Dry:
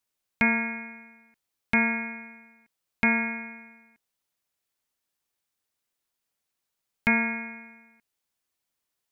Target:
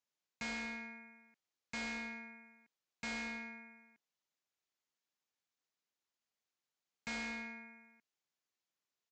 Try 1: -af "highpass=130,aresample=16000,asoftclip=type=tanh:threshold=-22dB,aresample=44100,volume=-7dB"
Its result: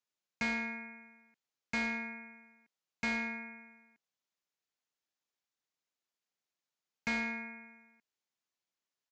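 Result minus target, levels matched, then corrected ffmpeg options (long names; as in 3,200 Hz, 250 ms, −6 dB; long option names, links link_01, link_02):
soft clipping: distortion −7 dB
-af "highpass=130,aresample=16000,asoftclip=type=tanh:threshold=-32.5dB,aresample=44100,volume=-7dB"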